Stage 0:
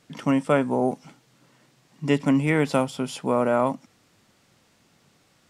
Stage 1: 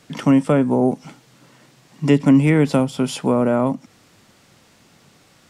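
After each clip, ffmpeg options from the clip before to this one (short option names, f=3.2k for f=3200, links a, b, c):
-filter_complex "[0:a]acrossover=split=410[a][b];[b]acompressor=threshold=-34dB:ratio=2.5[c];[a][c]amix=inputs=2:normalize=0,volume=8.5dB"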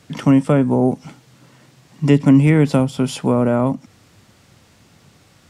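-af "equalizer=f=83:w=1:g=9.5"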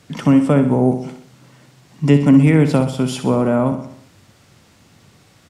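-af "aecho=1:1:63|126|189|252|315|378:0.316|0.174|0.0957|0.0526|0.0289|0.0159"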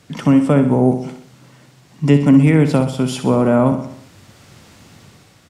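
-af "dynaudnorm=f=170:g=7:m=6.5dB"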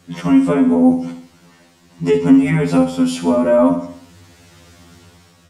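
-af "afftfilt=real='re*2*eq(mod(b,4),0)':imag='im*2*eq(mod(b,4),0)':win_size=2048:overlap=0.75,volume=2dB"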